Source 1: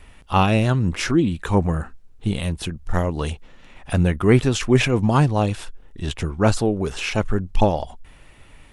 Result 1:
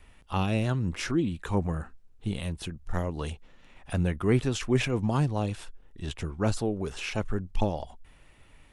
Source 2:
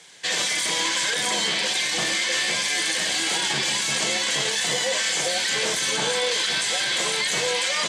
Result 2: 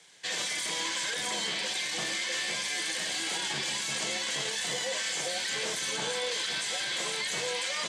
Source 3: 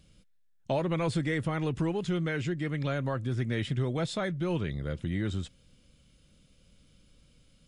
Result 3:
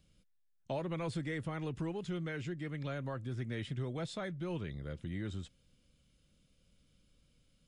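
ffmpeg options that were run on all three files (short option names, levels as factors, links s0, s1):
-filter_complex "[0:a]acrossover=split=480|3000[s0][s1][s2];[s1]acompressor=threshold=0.0891:ratio=6[s3];[s0][s3][s2]amix=inputs=3:normalize=0,volume=0.376"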